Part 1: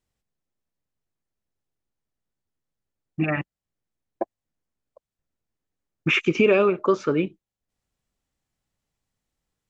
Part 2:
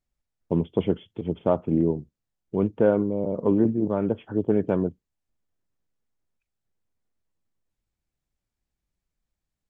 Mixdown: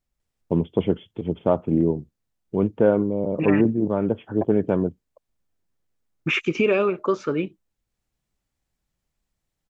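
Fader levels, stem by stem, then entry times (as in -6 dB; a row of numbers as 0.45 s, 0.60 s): -2.0 dB, +2.0 dB; 0.20 s, 0.00 s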